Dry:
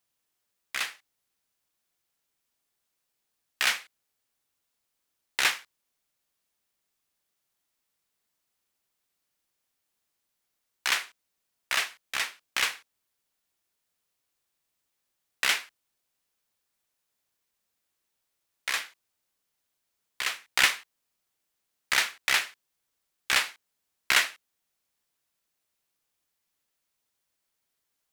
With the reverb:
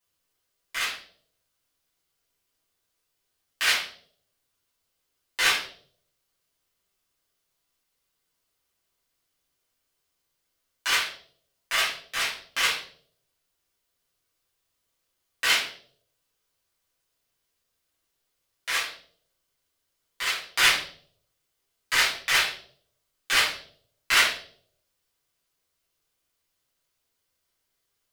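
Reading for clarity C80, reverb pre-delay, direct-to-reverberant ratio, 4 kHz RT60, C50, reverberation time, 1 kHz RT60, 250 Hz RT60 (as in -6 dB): 11.0 dB, 6 ms, -9.0 dB, 0.45 s, 6.0 dB, 0.55 s, 0.45 s, 0.70 s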